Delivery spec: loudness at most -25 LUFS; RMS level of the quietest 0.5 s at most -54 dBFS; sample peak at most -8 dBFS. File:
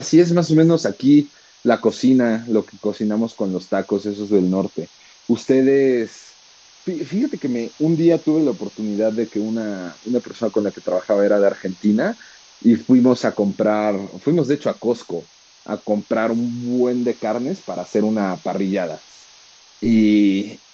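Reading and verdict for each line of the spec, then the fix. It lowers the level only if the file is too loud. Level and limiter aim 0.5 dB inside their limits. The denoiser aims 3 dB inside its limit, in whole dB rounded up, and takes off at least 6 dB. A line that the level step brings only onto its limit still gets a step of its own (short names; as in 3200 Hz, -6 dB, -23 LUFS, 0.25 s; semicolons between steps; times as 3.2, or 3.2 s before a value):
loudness -19.0 LUFS: fail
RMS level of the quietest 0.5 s -49 dBFS: fail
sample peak -3.0 dBFS: fail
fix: gain -6.5 dB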